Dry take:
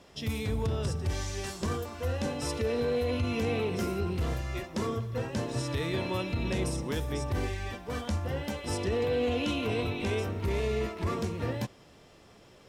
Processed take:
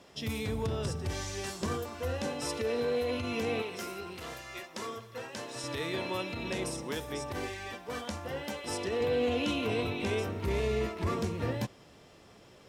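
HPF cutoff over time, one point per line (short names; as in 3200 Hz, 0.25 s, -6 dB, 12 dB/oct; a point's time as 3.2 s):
HPF 6 dB/oct
120 Hz
from 2.2 s 270 Hz
from 3.62 s 1000 Hz
from 5.64 s 350 Hz
from 9.01 s 120 Hz
from 10.47 s 46 Hz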